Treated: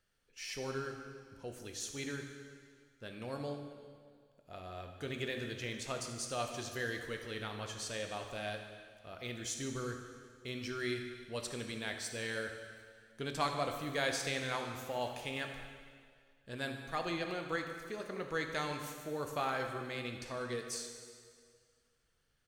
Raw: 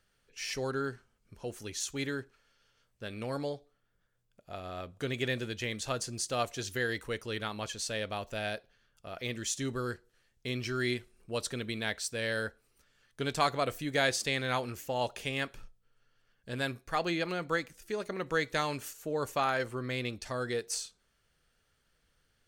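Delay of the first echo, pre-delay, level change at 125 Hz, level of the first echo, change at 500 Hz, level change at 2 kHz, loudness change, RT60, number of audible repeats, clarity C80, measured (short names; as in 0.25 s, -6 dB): 76 ms, 5 ms, -5.5 dB, -14.5 dB, -5.0 dB, -5.0 dB, -5.5 dB, 2.0 s, 1, 7.0 dB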